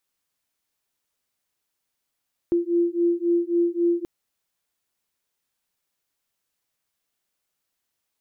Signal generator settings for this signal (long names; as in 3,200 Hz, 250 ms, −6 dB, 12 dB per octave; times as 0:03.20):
two tones that beat 342 Hz, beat 3.7 Hz, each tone −22 dBFS 1.53 s